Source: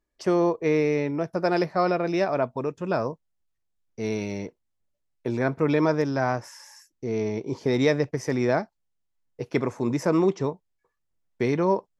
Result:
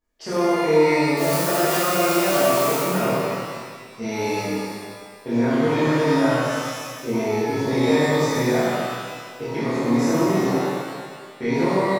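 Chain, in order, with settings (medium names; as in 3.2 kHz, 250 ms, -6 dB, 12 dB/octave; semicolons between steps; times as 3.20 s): 1.17–2.77 s: zero-crossing glitches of -17.5 dBFS; hum notches 50/100/150/200/250/300/350/400/450/500 Hz; peak limiter -19.5 dBFS, peak gain reduction 10.5 dB; doubling 26 ms -3.5 dB; loudspeakers at several distances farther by 26 m -10 dB, 66 m -11 dB; pitch-shifted reverb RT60 1.7 s, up +12 st, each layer -8 dB, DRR -10.5 dB; trim -4 dB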